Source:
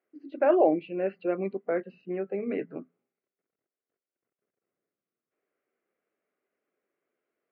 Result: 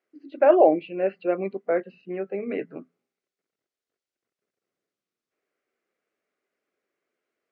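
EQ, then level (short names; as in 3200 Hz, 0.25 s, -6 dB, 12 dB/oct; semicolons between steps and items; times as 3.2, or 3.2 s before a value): high shelf 2600 Hz +12 dB; dynamic EQ 630 Hz, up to +6 dB, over -33 dBFS, Q 0.93; air absorption 94 m; 0.0 dB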